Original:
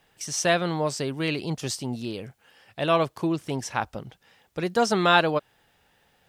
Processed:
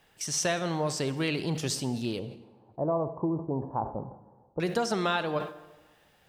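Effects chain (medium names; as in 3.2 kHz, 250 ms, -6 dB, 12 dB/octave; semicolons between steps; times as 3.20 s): 2.19–4.60 s: elliptic low-pass 1 kHz, stop band 60 dB; compression 6:1, threshold -25 dBFS, peak gain reduction 11.5 dB; reverberation RT60 1.3 s, pre-delay 48 ms, DRR 13 dB; decay stretcher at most 120 dB/s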